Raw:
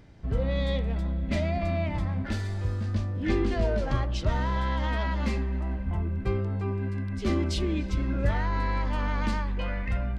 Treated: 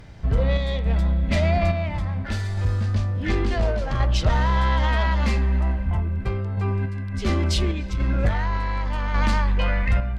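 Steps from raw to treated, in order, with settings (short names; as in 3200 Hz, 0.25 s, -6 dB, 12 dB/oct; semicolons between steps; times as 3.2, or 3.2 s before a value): bell 300 Hz -7 dB 1.2 oct; in parallel at -3.5 dB: sine folder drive 7 dB, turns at -13 dBFS; on the sum: random-step tremolo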